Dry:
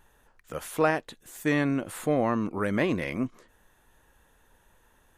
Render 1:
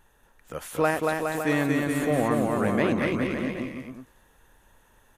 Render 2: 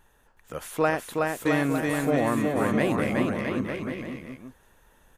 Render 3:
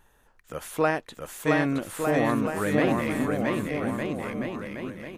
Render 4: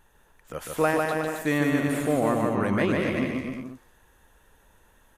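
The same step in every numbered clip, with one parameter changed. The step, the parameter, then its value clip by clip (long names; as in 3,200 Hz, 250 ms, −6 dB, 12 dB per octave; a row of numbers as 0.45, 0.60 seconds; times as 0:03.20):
bouncing-ball delay, first gap: 230, 370, 670, 150 milliseconds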